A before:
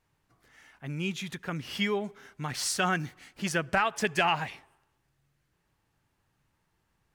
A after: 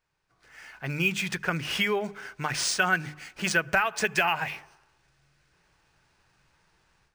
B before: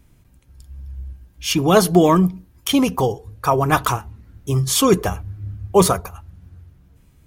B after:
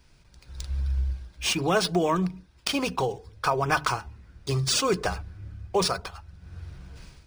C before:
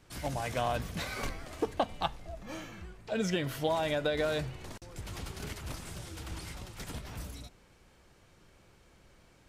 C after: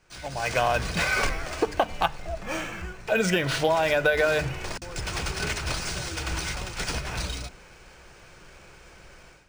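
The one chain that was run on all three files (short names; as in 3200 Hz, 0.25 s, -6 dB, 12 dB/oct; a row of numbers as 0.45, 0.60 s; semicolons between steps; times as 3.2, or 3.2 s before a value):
fifteen-band EQ 100 Hz -6 dB, 250 Hz -7 dB, 4000 Hz -10 dB, 10000 Hz +11 dB; AGC gain up to 14 dB; bell 2900 Hz +4.5 dB 1.6 oct; notches 50/100/150/200/250/300 Hz; compressor 2.5:1, threshold -19 dBFS; small resonant body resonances 1500/2500 Hz, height 8 dB; decimation joined by straight lines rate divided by 3×; match loudness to -27 LUFS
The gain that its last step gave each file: -5.5, -3.5, -1.5 dB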